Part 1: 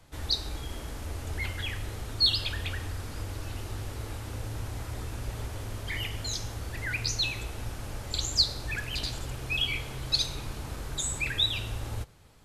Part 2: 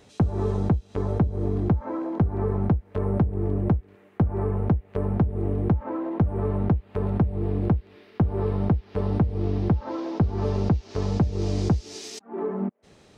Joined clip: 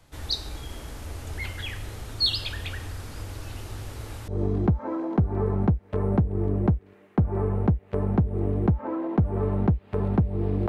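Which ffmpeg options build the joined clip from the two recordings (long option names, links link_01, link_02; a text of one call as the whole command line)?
ffmpeg -i cue0.wav -i cue1.wav -filter_complex "[0:a]apad=whole_dur=10.68,atrim=end=10.68,atrim=end=4.282[link_01];[1:a]atrim=start=1.298:end=7.7[link_02];[link_01][link_02]acrossfade=duration=0.004:curve1=hsin:curve2=hsin" out.wav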